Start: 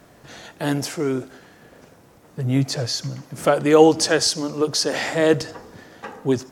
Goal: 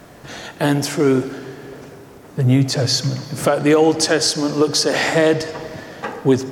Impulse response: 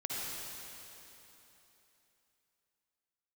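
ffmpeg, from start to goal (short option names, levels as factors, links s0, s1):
-filter_complex "[0:a]alimiter=limit=0.224:level=0:latency=1:release=380,asplit=2[s0][s1];[1:a]atrim=start_sample=2205,lowpass=4700[s2];[s1][s2]afir=irnorm=-1:irlink=0,volume=0.178[s3];[s0][s3]amix=inputs=2:normalize=0,volume=2.24"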